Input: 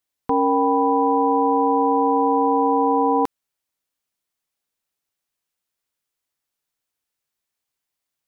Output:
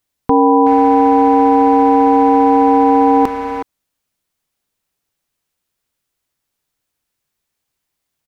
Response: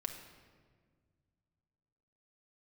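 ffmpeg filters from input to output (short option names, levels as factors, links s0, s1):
-filter_complex "[0:a]lowshelf=f=260:g=8,asplit=2[s0][s1];[s1]adelay=370,highpass=300,lowpass=3400,asoftclip=type=hard:threshold=0.158,volume=0.398[s2];[s0][s2]amix=inputs=2:normalize=0,volume=2"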